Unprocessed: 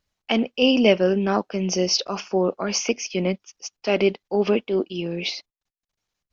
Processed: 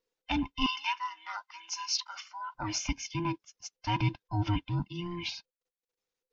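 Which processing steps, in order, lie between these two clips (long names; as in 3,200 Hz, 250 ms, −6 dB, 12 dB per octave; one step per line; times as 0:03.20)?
frequency inversion band by band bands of 500 Hz
0:00.66–0:02.55: high-pass filter 1,100 Hz 24 dB per octave
level −9 dB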